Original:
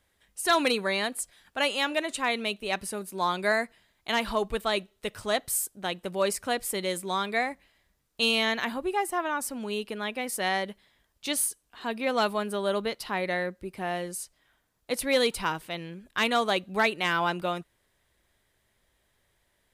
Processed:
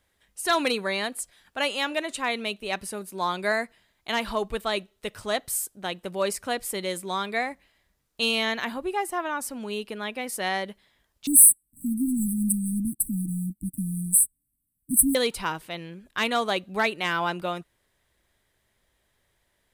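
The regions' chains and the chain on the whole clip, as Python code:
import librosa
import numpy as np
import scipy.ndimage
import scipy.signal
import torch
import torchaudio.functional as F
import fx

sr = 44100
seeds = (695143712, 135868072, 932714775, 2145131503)

y = fx.chain(x, sr, fx.high_shelf(hz=5300.0, db=10.5),
    fx.leveller(passes=3),
    fx.brickwall_bandstop(low_hz=310.0, high_hz=7700.0), at=(11.27, 15.15))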